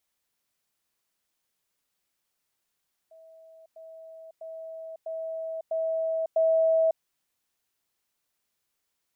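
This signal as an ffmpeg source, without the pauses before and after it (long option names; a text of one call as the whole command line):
ffmpeg -f lavfi -i "aevalsrc='pow(10,(-49+6*floor(t/0.65))/20)*sin(2*PI*648*t)*clip(min(mod(t,0.65),0.55-mod(t,0.65))/0.005,0,1)':duration=3.9:sample_rate=44100" out.wav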